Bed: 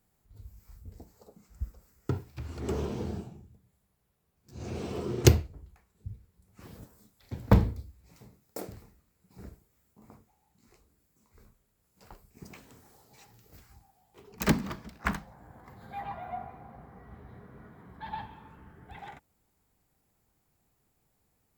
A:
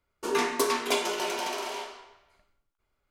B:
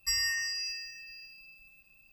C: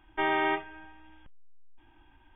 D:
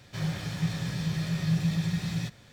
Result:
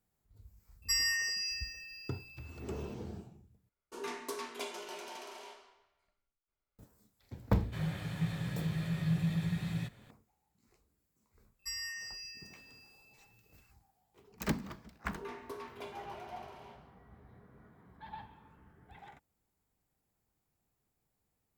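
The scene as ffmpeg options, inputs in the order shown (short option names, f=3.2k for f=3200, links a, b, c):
-filter_complex "[2:a]asplit=2[a][b];[1:a]asplit=2[c][d];[0:a]volume=-8.5dB[e];[4:a]equalizer=f=5.5k:t=o:w=0.69:g=-12.5[f];[d]equalizer=f=7.7k:w=0.52:g=-14.5[g];[e]asplit=2[h][i];[h]atrim=end=3.694[j];[c]atrim=end=3.1,asetpts=PTS-STARTPTS,volume=-14.5dB[k];[i]atrim=start=6.786[l];[a]atrim=end=2.12,asetpts=PTS-STARTPTS,volume=-1dB,afade=t=in:d=0.004:c=hsin,afade=t=out:st=2.116:d=0.004:c=hsin,adelay=820[m];[f]atrim=end=2.52,asetpts=PTS-STARTPTS,volume=-5dB,afade=t=in:d=0.004:c=hsin,afade=t=out:st=2.516:d=0.004:c=hsin,adelay=7590[n];[b]atrim=end=2.12,asetpts=PTS-STARTPTS,volume=-10.5dB,afade=t=in:d=0.004:c=hsin,afade=t=out:st=2.116:d=0.004:c=hsin,adelay=11590[o];[g]atrim=end=3.1,asetpts=PTS-STARTPTS,volume=-17.5dB,afade=t=in:d=0.004:c=hsin,afade=t=out:st=3.096:d=0.004:c=hsin,adelay=14900[p];[j][k]acrossfade=d=0.004:c1=hsin:c2=hsin[q];[q][l]acrossfade=d=0.004:c1=hsin:c2=hsin[r];[r][m][n][o][p]amix=inputs=5:normalize=0"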